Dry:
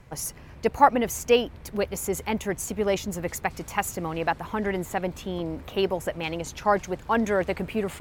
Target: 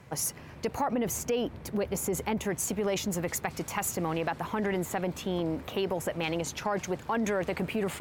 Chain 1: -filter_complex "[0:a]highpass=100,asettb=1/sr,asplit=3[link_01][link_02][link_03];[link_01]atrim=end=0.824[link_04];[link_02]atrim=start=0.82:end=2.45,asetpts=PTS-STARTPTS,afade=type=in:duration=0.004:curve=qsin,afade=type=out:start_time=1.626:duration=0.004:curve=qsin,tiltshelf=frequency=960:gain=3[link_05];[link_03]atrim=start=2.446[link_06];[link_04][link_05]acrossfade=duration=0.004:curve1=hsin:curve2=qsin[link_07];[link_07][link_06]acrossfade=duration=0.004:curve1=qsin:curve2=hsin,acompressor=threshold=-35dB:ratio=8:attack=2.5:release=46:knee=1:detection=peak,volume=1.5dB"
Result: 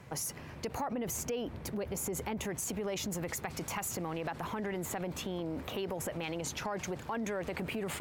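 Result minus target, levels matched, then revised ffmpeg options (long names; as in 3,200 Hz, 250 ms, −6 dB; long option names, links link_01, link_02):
downward compressor: peak gain reduction +7 dB
-filter_complex "[0:a]highpass=100,asettb=1/sr,asplit=3[link_01][link_02][link_03];[link_01]atrim=end=0.824[link_04];[link_02]atrim=start=0.82:end=2.45,asetpts=PTS-STARTPTS,afade=type=in:duration=0.004:curve=qsin,afade=type=out:start_time=1.626:duration=0.004:curve=qsin,tiltshelf=frequency=960:gain=3[link_05];[link_03]atrim=start=2.446[link_06];[link_04][link_05]acrossfade=duration=0.004:curve1=hsin:curve2=qsin[link_07];[link_07][link_06]acrossfade=duration=0.004:curve1=qsin:curve2=hsin,acompressor=threshold=-27dB:ratio=8:attack=2.5:release=46:knee=1:detection=peak,volume=1.5dB"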